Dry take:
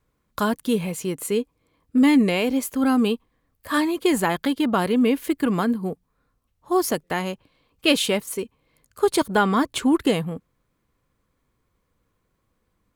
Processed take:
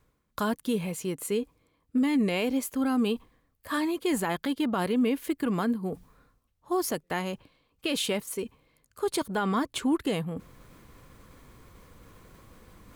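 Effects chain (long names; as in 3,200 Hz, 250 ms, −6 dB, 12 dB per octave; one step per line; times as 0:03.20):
reversed playback
upward compression, threshold −27 dBFS
reversed playback
brickwall limiter −13.5 dBFS, peak gain reduction 9 dB
level −5 dB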